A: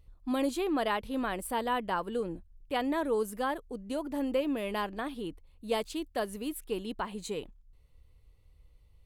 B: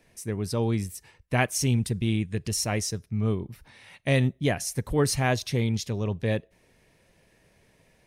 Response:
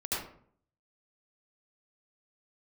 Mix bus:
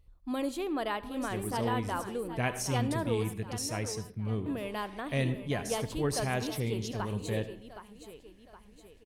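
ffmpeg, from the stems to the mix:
-filter_complex "[0:a]volume=-3.5dB,asplit=3[link_01][link_02][link_03];[link_01]atrim=end=3.38,asetpts=PTS-STARTPTS,afade=type=out:start_time=3.376:duration=0.004:curve=hsin[link_04];[link_02]atrim=start=3.38:end=4.46,asetpts=PTS-STARTPTS,volume=0[link_05];[link_03]atrim=start=4.46,asetpts=PTS-STARTPTS,afade=type=in:duration=0.004:curve=hsin[link_06];[link_04][link_05][link_06]concat=n=3:v=0:a=1,asplit=3[link_07][link_08][link_09];[link_08]volume=-21.5dB[link_10];[link_09]volume=-10dB[link_11];[1:a]adelay=1050,volume=-8.5dB,asplit=2[link_12][link_13];[link_13]volume=-15.5dB[link_14];[2:a]atrim=start_sample=2205[link_15];[link_10][link_14]amix=inputs=2:normalize=0[link_16];[link_16][link_15]afir=irnorm=-1:irlink=0[link_17];[link_11]aecho=0:1:768|1536|2304|3072|3840|4608:1|0.46|0.212|0.0973|0.0448|0.0206[link_18];[link_07][link_12][link_17][link_18]amix=inputs=4:normalize=0"

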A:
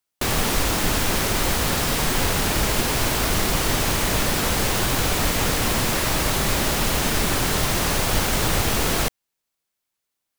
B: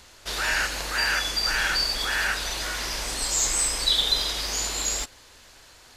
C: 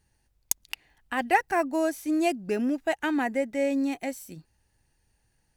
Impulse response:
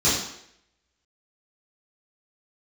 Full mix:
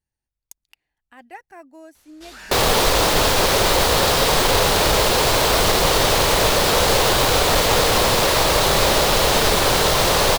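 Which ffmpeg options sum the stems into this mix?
-filter_complex "[0:a]equalizer=frequency=250:width_type=o:width=1:gain=-5,equalizer=frequency=500:width_type=o:width=1:gain=10,equalizer=frequency=1000:width_type=o:width=1:gain=5,equalizer=frequency=4000:width_type=o:width=1:gain=7,aeval=exprs='clip(val(0),-1,0.168)':channel_layout=same,adelay=2300,volume=2dB[link_01];[1:a]asoftclip=type=tanh:threshold=-22.5dB,adelay=1950,volume=-11.5dB[link_02];[2:a]volume=-17dB[link_03];[link_01][link_02][link_03]amix=inputs=3:normalize=0"

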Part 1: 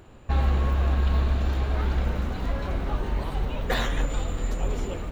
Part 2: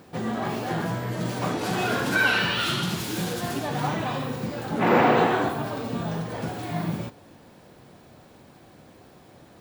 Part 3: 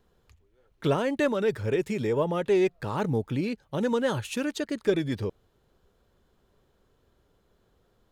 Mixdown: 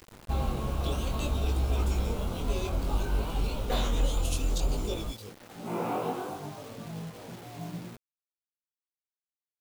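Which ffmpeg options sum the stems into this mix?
ffmpeg -i stem1.wav -i stem2.wav -i stem3.wav -filter_complex "[0:a]volume=0dB[link_01];[1:a]aemphasis=mode=reproduction:type=cd,flanger=delay=16.5:depth=3.6:speed=0.44,adelay=850,volume=-6.5dB[link_02];[2:a]aexciter=amount=7.9:drive=3.7:freq=2400,volume=-13.5dB,asplit=2[link_03][link_04];[link_04]apad=whole_len=461226[link_05];[link_02][link_05]sidechaincompress=threshold=-42dB:ratio=5:attack=8.3:release=862[link_06];[link_01][link_06][link_03]amix=inputs=3:normalize=0,equalizer=frequency=1800:width_type=o:width=0.41:gain=-14.5,flanger=delay=18:depth=5.8:speed=0.59,acrusher=bits=7:mix=0:aa=0.000001" out.wav

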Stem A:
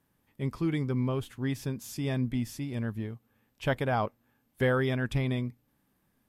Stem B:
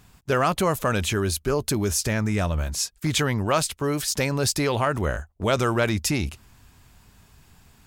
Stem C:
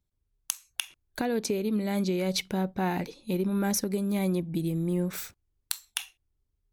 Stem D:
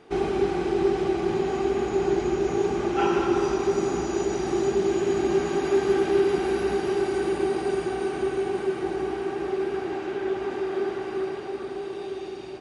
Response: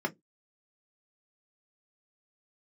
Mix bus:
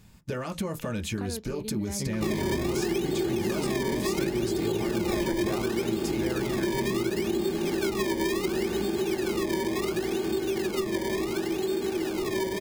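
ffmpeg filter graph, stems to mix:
-filter_complex "[0:a]alimiter=level_in=1.5dB:limit=-24dB:level=0:latency=1:release=373,volume=-1.5dB,adelay=1600,volume=2.5dB[link_01];[1:a]acompressor=threshold=-27dB:ratio=6,volume=-2dB,asplit=2[link_02][link_03];[link_03]volume=-9dB[link_04];[2:a]lowpass=7000,deesser=0.85,volume=-9dB[link_05];[3:a]acrusher=samples=22:mix=1:aa=0.000001:lfo=1:lforange=22:lforate=0.7,adelay=2100,volume=1.5dB,asplit=2[link_06][link_07];[link_07]volume=-9dB[link_08];[4:a]atrim=start_sample=2205[link_09];[link_04][link_08]amix=inputs=2:normalize=0[link_10];[link_10][link_09]afir=irnorm=-1:irlink=0[link_11];[link_01][link_02][link_05][link_06][link_11]amix=inputs=5:normalize=0,acompressor=threshold=-25dB:ratio=4"

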